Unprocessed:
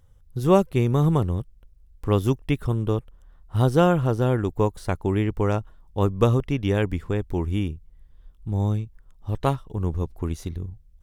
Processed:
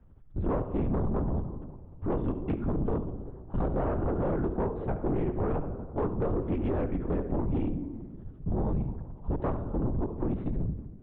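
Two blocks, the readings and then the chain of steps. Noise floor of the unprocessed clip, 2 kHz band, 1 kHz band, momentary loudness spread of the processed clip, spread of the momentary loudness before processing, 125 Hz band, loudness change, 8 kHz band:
-54 dBFS, -13.0 dB, -8.5 dB, 9 LU, 14 LU, -9.0 dB, -8.0 dB, no reading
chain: CVSD coder 64 kbps; FDN reverb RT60 1.6 s, low-frequency decay 1×, high-frequency decay 0.5×, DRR 12.5 dB; Chebyshev shaper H 4 -17 dB, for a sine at -4 dBFS; level rider gain up to 4 dB; LPC vocoder at 8 kHz whisper; flutter echo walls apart 12 m, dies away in 0.25 s; compression 6:1, threshold -20 dBFS, peak gain reduction 10.5 dB; saturation -23.5 dBFS, distortion -10 dB; low-pass 1.1 kHz 12 dB/octave

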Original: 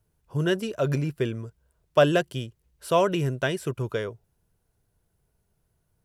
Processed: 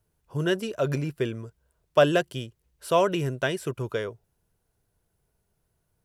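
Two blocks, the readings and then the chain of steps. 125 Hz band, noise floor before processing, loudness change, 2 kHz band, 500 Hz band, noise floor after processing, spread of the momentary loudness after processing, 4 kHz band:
-2.5 dB, -74 dBFS, -0.5 dB, 0.0 dB, 0.0 dB, -75 dBFS, 16 LU, 0.0 dB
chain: tone controls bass -3 dB, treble 0 dB

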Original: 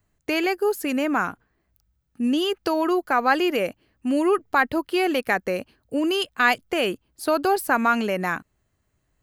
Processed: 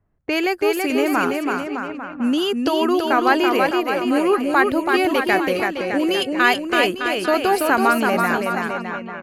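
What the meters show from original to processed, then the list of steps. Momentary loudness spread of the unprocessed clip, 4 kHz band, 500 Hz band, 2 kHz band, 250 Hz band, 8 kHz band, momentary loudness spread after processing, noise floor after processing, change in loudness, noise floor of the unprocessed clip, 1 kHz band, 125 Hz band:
8 LU, +4.5 dB, +4.5 dB, +4.5 dB, +4.5 dB, +4.0 dB, 7 LU, -33 dBFS, +4.0 dB, -72 dBFS, +4.5 dB, +4.5 dB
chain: bouncing-ball echo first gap 330 ms, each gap 0.85×, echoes 5; level-controlled noise filter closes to 1.3 kHz, open at -19 dBFS; trim +2.5 dB

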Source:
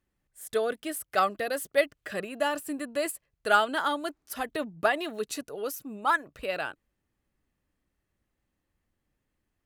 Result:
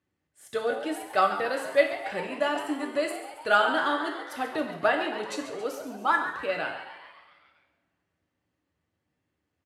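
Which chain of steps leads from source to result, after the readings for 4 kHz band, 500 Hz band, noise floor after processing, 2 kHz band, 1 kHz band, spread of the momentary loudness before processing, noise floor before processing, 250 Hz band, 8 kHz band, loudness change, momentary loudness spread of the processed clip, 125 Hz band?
+1.0 dB, +2.0 dB, -81 dBFS, +2.5 dB, +2.0 dB, 10 LU, -81 dBFS, +2.5 dB, -6.0 dB, +2.0 dB, 10 LU, +1.0 dB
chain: high-pass 87 Hz 24 dB/octave; distance through air 65 m; frequency-shifting echo 137 ms, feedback 61%, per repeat +110 Hz, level -12 dB; two-slope reverb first 0.69 s, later 2 s, from -18 dB, DRR 3 dB

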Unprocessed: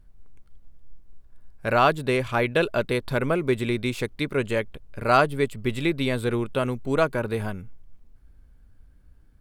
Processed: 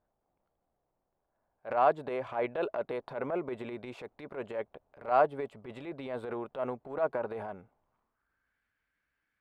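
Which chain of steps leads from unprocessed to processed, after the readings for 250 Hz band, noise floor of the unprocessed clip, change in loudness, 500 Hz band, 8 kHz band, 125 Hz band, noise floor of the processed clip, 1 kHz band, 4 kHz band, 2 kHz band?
-14.0 dB, -54 dBFS, -9.0 dB, -8.0 dB, under -25 dB, -20.5 dB, -83 dBFS, -6.0 dB, -21.0 dB, -15.0 dB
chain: band-pass sweep 730 Hz -> 2 kHz, 7.68–8.63 s; transient shaper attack -10 dB, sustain +5 dB

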